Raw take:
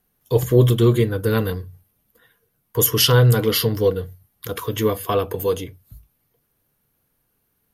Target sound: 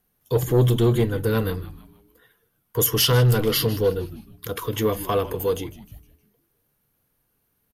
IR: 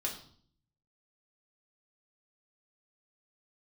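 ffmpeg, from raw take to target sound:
-filter_complex "[0:a]asplit=5[link_01][link_02][link_03][link_04][link_05];[link_02]adelay=155,afreqshift=-130,volume=-16.5dB[link_06];[link_03]adelay=310,afreqshift=-260,volume=-23.4dB[link_07];[link_04]adelay=465,afreqshift=-390,volume=-30.4dB[link_08];[link_05]adelay=620,afreqshift=-520,volume=-37.3dB[link_09];[link_01][link_06][link_07][link_08][link_09]amix=inputs=5:normalize=0,asoftclip=type=tanh:threshold=-5.5dB,acontrast=39,volume=-7dB"

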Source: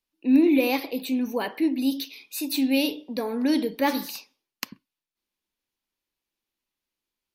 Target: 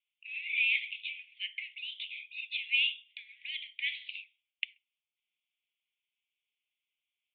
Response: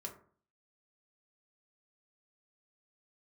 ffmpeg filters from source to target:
-af "acrusher=bits=8:mode=log:mix=0:aa=0.000001,asuperpass=centerf=2700:order=12:qfactor=1.9,volume=4dB"

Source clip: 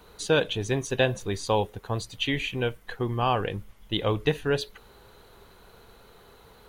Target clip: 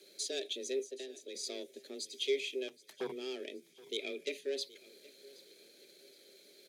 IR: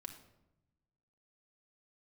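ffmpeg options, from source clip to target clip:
-filter_complex "[0:a]aeval=exprs='if(lt(val(0),0),0.708*val(0),val(0))':channel_layout=same,asplit=2[link_01][link_02];[link_02]acompressor=threshold=-40dB:ratio=6,volume=1dB[link_03];[link_01][link_03]amix=inputs=2:normalize=0,asoftclip=type=tanh:threshold=-18.5dB,aexciter=amount=6.6:drive=8.8:freq=4300,asettb=1/sr,asplit=3[link_04][link_05][link_06];[link_04]atrim=end=0.794[link_07];[link_05]atrim=start=0.79:end=1.35,asetpts=PTS-STARTPTS,afade=type=in:duration=0.004:curve=qsin,afade=type=out:start_time=0.556:duration=0.004:curve=qsin,acrossover=split=120|400|920[link_08][link_09][link_10][link_11];[link_08]acompressor=threshold=-47dB:ratio=4[link_12];[link_09]acompressor=threshold=-37dB:ratio=4[link_13];[link_10]acompressor=threshold=-41dB:ratio=4[link_14];[link_11]acompressor=threshold=-29dB:ratio=4[link_15];[link_12][link_13][link_14][link_15]amix=inputs=4:normalize=0[link_16];[link_06]atrim=start=1.346[link_17];[link_07][link_16]acrossfade=duration=0.004:curve1=hsin:curve2=qsin[link_18];[link_18][link_17]acrossfade=duration=0.004:curve1=qsin:curve2=hsin,asplit=3[link_19][link_20][link_21];[link_19]bandpass=frequency=270:width_type=q:width=8,volume=0dB[link_22];[link_20]bandpass=frequency=2290:width_type=q:width=8,volume=-6dB[link_23];[link_21]bandpass=frequency=3010:width_type=q:width=8,volume=-9dB[link_24];[link_22][link_23][link_24]amix=inputs=3:normalize=0,asettb=1/sr,asplit=3[link_25][link_26][link_27];[link_25]atrim=end=2.684[link_28];[link_26]atrim=start=2.68:end=3.12,asetpts=PTS-STARTPTS,afade=type=in:duration=0.004:curve=qsin,afade=type=out:start_time=0.436:duration=0.004:curve=qsin,aeval=exprs='0.0299*(cos(1*acos(clip(val(0)/0.0299,-1,1)))-cos(1*PI/2))+0.00668*(cos(7*acos(clip(val(0)/0.0299,-1,1)))-cos(7*PI/2))':channel_layout=same[link_29];[link_27]atrim=start=3.116[link_30];[link_28][link_29]acrossfade=duration=0.004:curve1=hsin:curve2=qsin[link_31];[link_31][link_30]acrossfade=duration=0.004:curve1=qsin:curve2=hsin,afreqshift=130,asettb=1/sr,asplit=3[link_32][link_33][link_34];[link_32]atrim=end=3.964[link_35];[link_33]atrim=start=3.96:end=4.38,asetpts=PTS-STARTPTS,afade=type=in:duration=0.004:curve=qsin,afade=type=out:start_time=0.416:duration=0.004:curve=qsin,equalizer=frequency=2400:width=7.5:gain=13.5[link_36];[link_34]atrim=start=4.376[link_37];[link_35][link_36]acrossfade=duration=0.004:curve1=hsin:curve2=qsin[link_38];[link_38][link_37]acrossfade=duration=0.004:curve1=qsin:curve2=hsin,asplit=2[link_39][link_40];[link_40]aecho=0:1:773|1546|2319:0.0944|0.0359|0.0136[link_41];[link_39][link_41]amix=inputs=2:normalize=0,volume=1dB"

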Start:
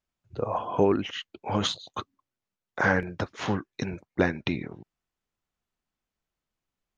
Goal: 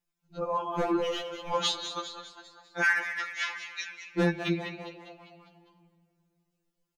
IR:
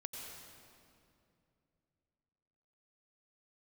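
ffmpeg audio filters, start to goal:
-filter_complex "[0:a]asettb=1/sr,asplit=3[link_01][link_02][link_03];[link_01]atrim=end=1.004[link_04];[link_02]atrim=start=1:end=1.53,asetpts=PTS-STARTPTS,afade=type=in:duration=0.004:curve=qsin,afade=type=out:start_time=0.526:duration=0.004:curve=qsin,aeval=exprs='if(lt(val(0),0),0.708*val(0),val(0))':channel_layout=same[link_05];[link_03]atrim=start=1.526[link_06];[link_04][link_05]acrossfade=duration=0.004:curve1=hsin:curve2=qsin[link_07];[link_07][link_06]acrossfade=duration=0.004:curve1=qsin:curve2=hsin,highshelf=frequency=5800:gain=7.5,aphaser=in_gain=1:out_gain=1:delay=4.7:decay=0.26:speed=0.38:type=triangular,asplit=3[link_08][link_09][link_10];[link_08]afade=type=out:start_time=2.82:duration=0.02[link_11];[link_09]highpass=frequency=1900:width_type=q:width=2.5,afade=type=in:start_time=2.82:duration=0.02,afade=type=out:start_time=4.07:duration=0.02[link_12];[link_10]afade=type=in:start_time=4.07:duration=0.02[link_13];[link_11][link_12][link_13]amix=inputs=3:normalize=0,aeval=exprs='0.251*(abs(mod(val(0)/0.251+3,4)-2)-1)':channel_layout=same,asplit=7[link_14][link_15][link_16][link_17][link_18][link_19][link_20];[link_15]adelay=201,afreqshift=110,volume=-10dB[link_21];[link_16]adelay=402,afreqshift=220,volume=-15.5dB[link_22];[link_17]adelay=603,afreqshift=330,volume=-21dB[link_23];[link_18]adelay=804,afreqshift=440,volume=-26.5dB[link_24];[link_19]adelay=1005,afreqshift=550,volume=-32.1dB[link_25];[link_20]adelay=1206,afreqshift=660,volume=-37.6dB[link_26];[link_14][link_21][link_22][link_23][link_24][link_25][link_26]amix=inputs=7:normalize=0,asplit=2[link_27][link_28];[1:a]atrim=start_sample=2205,lowpass=6300,adelay=5[link_29];[link_28][link_29]afir=irnorm=-1:irlink=0,volume=-13dB[link_30];[link_27][link_30]amix=inputs=2:normalize=0,afftfilt=real='re*2.83*eq(mod(b,8),0)':imag='im*2.83*eq(mod(b,8),0)':win_size=2048:overlap=0.75"

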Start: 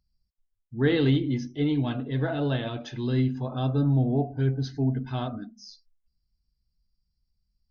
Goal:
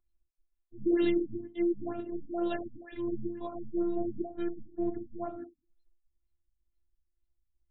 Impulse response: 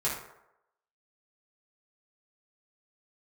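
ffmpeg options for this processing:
-af "afftfilt=real='hypot(re,im)*cos(PI*b)':imag='0':win_size=512:overlap=0.75,afftfilt=real='re*lt(b*sr/1024,260*pow(4300/260,0.5+0.5*sin(2*PI*2.1*pts/sr)))':imag='im*lt(b*sr/1024,260*pow(4300/260,0.5+0.5*sin(2*PI*2.1*pts/sr)))':win_size=1024:overlap=0.75"

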